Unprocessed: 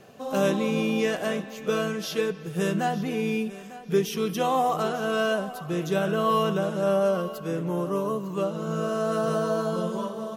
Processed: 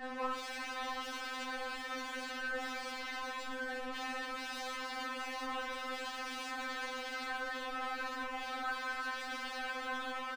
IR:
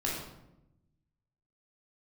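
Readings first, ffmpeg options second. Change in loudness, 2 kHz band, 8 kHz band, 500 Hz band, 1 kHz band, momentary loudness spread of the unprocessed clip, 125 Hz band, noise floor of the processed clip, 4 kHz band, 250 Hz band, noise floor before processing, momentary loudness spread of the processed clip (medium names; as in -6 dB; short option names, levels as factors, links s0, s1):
-13.0 dB, -3.5 dB, -10.0 dB, -21.0 dB, -10.0 dB, 7 LU, under -40 dB, -43 dBFS, -5.5 dB, -20.5 dB, -41 dBFS, 2 LU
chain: -filter_complex "[0:a]equalizer=f=6100:w=1.4:g=-6.5,aecho=1:1:20|39:0.422|0.631,aresample=16000,asoftclip=type=tanh:threshold=0.0944,aresample=44100,asuperstop=centerf=4100:order=12:qfactor=0.8[s0];[1:a]atrim=start_sample=2205,afade=t=out:st=0.27:d=0.01,atrim=end_sample=12348[s1];[s0][s1]afir=irnorm=-1:irlink=0,afftfilt=real='re*lt(hypot(re,im),0.126)':imag='im*lt(hypot(re,im),0.126)':win_size=1024:overlap=0.75,highshelf=f=2900:t=q:w=3:g=-10.5,aexciter=amount=8:drive=4.3:freq=3300,aeval=exprs='0.0168*(abs(mod(val(0)/0.0168+3,4)-2)-1)':c=same,asplit=2[s2][s3];[s3]highpass=f=720:p=1,volume=17.8,asoftclip=type=tanh:threshold=0.0178[s4];[s2][s4]amix=inputs=2:normalize=0,lowpass=f=1600:p=1,volume=0.501,afftfilt=real='re*3.46*eq(mod(b,12),0)':imag='im*3.46*eq(mod(b,12),0)':win_size=2048:overlap=0.75,volume=1.41"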